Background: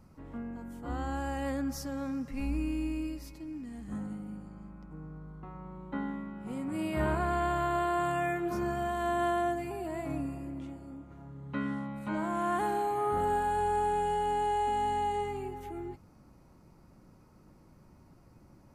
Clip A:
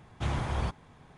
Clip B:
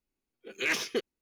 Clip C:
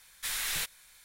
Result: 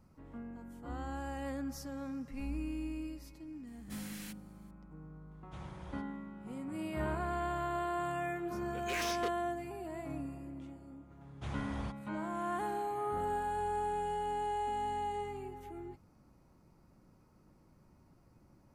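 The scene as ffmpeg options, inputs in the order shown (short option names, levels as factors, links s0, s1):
-filter_complex "[1:a]asplit=2[s0][s1];[0:a]volume=0.501[s2];[3:a]bandreject=f=3700:w=9.5[s3];[2:a]asoftclip=type=hard:threshold=0.0237[s4];[s3]atrim=end=1.04,asetpts=PTS-STARTPTS,volume=0.15,afade=t=in:d=0.004:c=hsin,afade=t=out:st=1.036:d=0.004:c=hsin,adelay=3670[s5];[s0]atrim=end=1.17,asetpts=PTS-STARTPTS,volume=0.126,afade=t=in:d=0.004:c=hsin,afade=t=out:st=1.166:d=0.004:c=hsin,adelay=5310[s6];[s4]atrim=end=1.21,asetpts=PTS-STARTPTS,volume=0.708,afade=t=in:d=0.004:c=hsin,afade=t=out:st=1.206:d=0.004:c=hsin,adelay=8280[s7];[s1]atrim=end=1.17,asetpts=PTS-STARTPTS,volume=0.299,afade=t=in:d=0.004:c=hsin,afade=t=out:st=1.166:d=0.004:c=hsin,adelay=11210[s8];[s2][s5][s6][s7][s8]amix=inputs=5:normalize=0"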